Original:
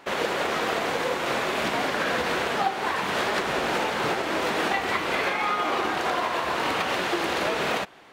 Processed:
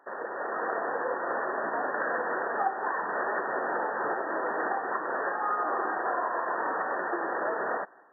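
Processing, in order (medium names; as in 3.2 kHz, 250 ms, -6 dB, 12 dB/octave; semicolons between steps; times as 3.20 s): high-pass 380 Hz 12 dB/octave; level rider gain up to 6 dB; brick-wall FIR low-pass 1.9 kHz; trim -8.5 dB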